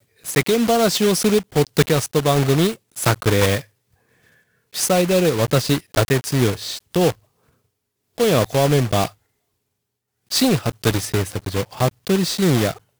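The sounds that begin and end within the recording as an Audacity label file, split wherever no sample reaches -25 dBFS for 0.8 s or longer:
4.750000	7.110000	sound
8.180000	9.070000	sound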